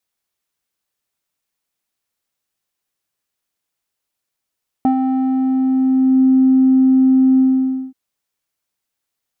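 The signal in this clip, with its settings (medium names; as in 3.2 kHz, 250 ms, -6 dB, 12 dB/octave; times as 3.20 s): synth note square C4 12 dB/octave, low-pass 330 Hz, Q 5.9, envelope 1 oct, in 1.35 s, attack 1.2 ms, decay 0.10 s, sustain -4.5 dB, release 0.54 s, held 2.54 s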